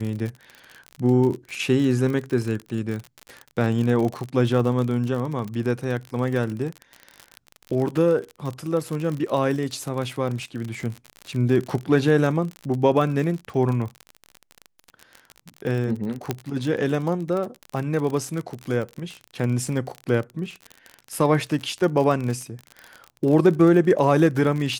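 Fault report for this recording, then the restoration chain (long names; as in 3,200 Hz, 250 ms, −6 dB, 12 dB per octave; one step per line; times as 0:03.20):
surface crackle 43 per second −27 dBFS
0:16.31: click −9 dBFS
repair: click removal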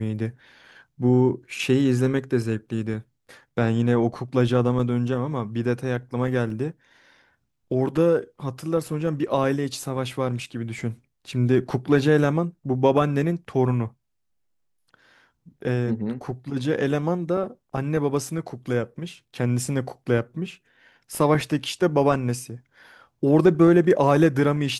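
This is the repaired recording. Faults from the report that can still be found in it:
none of them is left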